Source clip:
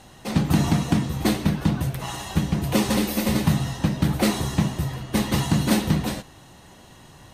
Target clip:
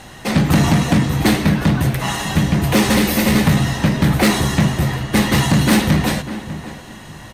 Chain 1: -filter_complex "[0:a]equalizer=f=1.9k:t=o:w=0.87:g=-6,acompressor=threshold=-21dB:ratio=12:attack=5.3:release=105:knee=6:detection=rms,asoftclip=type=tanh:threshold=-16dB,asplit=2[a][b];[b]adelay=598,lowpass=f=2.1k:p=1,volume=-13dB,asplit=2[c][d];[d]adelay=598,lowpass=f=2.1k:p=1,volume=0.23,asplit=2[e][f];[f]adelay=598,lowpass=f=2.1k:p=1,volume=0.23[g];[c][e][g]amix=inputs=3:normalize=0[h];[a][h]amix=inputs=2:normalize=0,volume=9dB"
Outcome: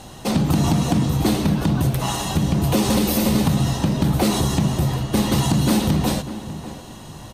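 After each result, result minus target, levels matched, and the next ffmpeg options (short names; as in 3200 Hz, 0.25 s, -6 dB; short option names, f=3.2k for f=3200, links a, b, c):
compressor: peak gain reduction +10 dB; 2000 Hz band -7.5 dB
-filter_complex "[0:a]equalizer=f=1.9k:t=o:w=0.87:g=-6,asoftclip=type=tanh:threshold=-16dB,asplit=2[a][b];[b]adelay=598,lowpass=f=2.1k:p=1,volume=-13dB,asplit=2[c][d];[d]adelay=598,lowpass=f=2.1k:p=1,volume=0.23,asplit=2[e][f];[f]adelay=598,lowpass=f=2.1k:p=1,volume=0.23[g];[c][e][g]amix=inputs=3:normalize=0[h];[a][h]amix=inputs=2:normalize=0,volume=9dB"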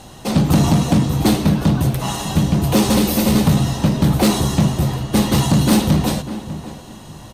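2000 Hz band -8.0 dB
-filter_complex "[0:a]equalizer=f=1.9k:t=o:w=0.87:g=5.5,asoftclip=type=tanh:threshold=-16dB,asplit=2[a][b];[b]adelay=598,lowpass=f=2.1k:p=1,volume=-13dB,asplit=2[c][d];[d]adelay=598,lowpass=f=2.1k:p=1,volume=0.23,asplit=2[e][f];[f]adelay=598,lowpass=f=2.1k:p=1,volume=0.23[g];[c][e][g]amix=inputs=3:normalize=0[h];[a][h]amix=inputs=2:normalize=0,volume=9dB"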